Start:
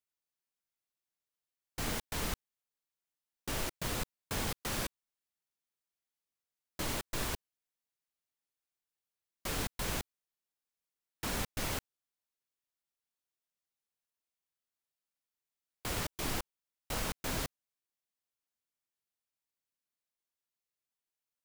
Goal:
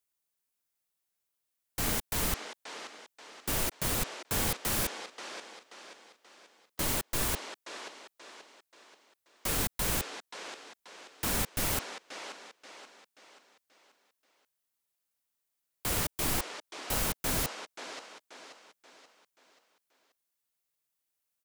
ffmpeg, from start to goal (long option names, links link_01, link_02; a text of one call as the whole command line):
ffmpeg -i in.wav -filter_complex "[0:a]acrossover=split=310|7800[link_01][link_02][link_03];[link_02]aecho=1:1:532|1064|1596|2128|2660:0.447|0.192|0.0826|0.0355|0.0153[link_04];[link_03]acontrast=68[link_05];[link_01][link_04][link_05]amix=inputs=3:normalize=0,volume=3.5dB" out.wav